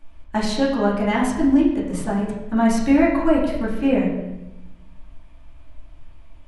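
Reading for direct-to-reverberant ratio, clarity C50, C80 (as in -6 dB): -7.0 dB, 3.0 dB, 5.5 dB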